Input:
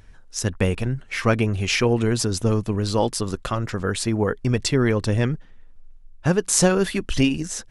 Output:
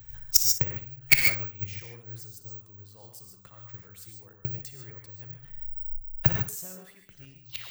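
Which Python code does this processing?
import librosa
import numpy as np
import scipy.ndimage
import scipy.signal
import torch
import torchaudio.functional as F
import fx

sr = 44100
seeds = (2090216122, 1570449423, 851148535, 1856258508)

p1 = fx.tape_stop_end(x, sr, length_s=0.34)
p2 = fx.over_compress(p1, sr, threshold_db=-28.0, ratio=-1.0)
p3 = p1 + (p2 * librosa.db_to_amplitude(-0.5))
p4 = fx.gate_flip(p3, sr, shuts_db=-12.0, range_db=-25)
p5 = fx.dynamic_eq(p4, sr, hz=2100.0, q=3.1, threshold_db=-56.0, ratio=4.0, max_db=6)
p6 = fx.tube_stage(p5, sr, drive_db=17.0, bias=0.7)
p7 = fx.graphic_eq(p6, sr, hz=(125, 250, 8000), db=(11, -10, 9))
p8 = fx.rev_gated(p7, sr, seeds[0], gate_ms=170, shape='rising', drr_db=3.0)
p9 = (np.kron(scipy.signal.resample_poly(p8, 1, 2), np.eye(2)[0]) * 2)[:len(p8)]
p10 = fx.room_flutter(p9, sr, wall_m=10.2, rt60_s=0.29)
p11 = fx.band_widen(p10, sr, depth_pct=100)
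y = p11 * librosa.db_to_amplitude(-3.0)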